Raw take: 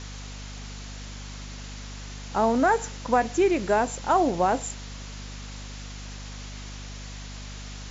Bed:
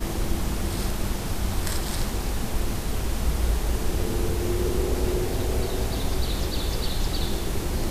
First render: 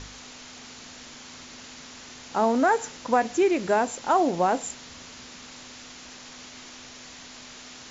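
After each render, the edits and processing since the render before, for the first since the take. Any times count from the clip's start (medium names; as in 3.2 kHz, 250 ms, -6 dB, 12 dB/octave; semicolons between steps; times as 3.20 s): de-hum 50 Hz, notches 4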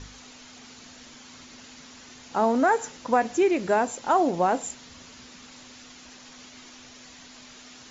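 noise reduction 6 dB, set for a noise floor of -45 dBFS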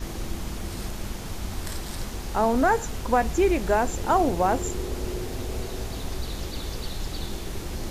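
add bed -6 dB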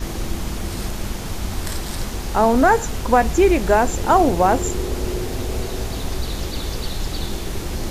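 trim +6.5 dB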